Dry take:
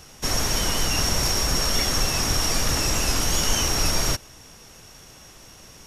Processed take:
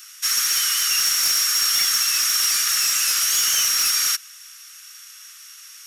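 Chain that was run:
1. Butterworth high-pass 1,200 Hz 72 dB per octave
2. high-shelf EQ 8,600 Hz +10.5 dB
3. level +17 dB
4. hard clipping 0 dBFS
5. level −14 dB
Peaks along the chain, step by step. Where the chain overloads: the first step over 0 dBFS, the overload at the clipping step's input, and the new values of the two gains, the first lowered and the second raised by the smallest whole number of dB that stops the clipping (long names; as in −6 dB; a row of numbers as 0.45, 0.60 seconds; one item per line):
−11.5, −8.0, +9.0, 0.0, −14.0 dBFS
step 3, 9.0 dB
step 3 +8 dB, step 5 −5 dB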